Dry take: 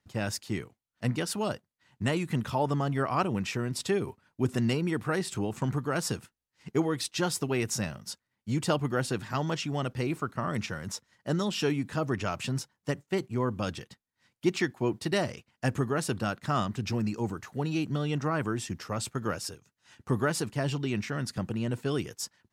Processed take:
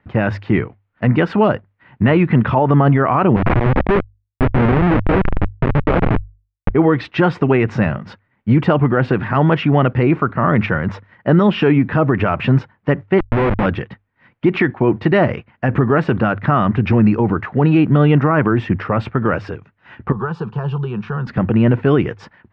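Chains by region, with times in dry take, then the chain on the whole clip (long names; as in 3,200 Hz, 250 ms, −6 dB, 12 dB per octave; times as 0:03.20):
0:03.36–0:06.70: hold until the input has moved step −27 dBFS + low-pass filter 2,100 Hz + comparator with hysteresis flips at −34.5 dBFS
0:13.19–0:13.66: low-shelf EQ 280 Hz −3.5 dB + comparator with hysteresis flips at −34.5 dBFS + expander for the loud parts, over −43 dBFS
0:20.12–0:21.27: parametric band 320 Hz −8 dB 0.78 octaves + downward compressor 4 to 1, threshold −35 dBFS + phaser with its sweep stopped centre 410 Hz, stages 8
whole clip: low-pass filter 2,300 Hz 24 dB per octave; mains-hum notches 50/100 Hz; boost into a limiter +22.5 dB; level −3.5 dB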